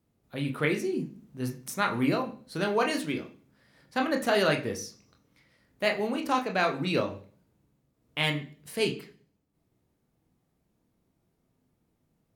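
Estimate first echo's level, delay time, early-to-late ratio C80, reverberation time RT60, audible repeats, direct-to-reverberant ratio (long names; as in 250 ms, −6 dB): no echo audible, no echo audible, 16.5 dB, 0.40 s, no echo audible, 2.5 dB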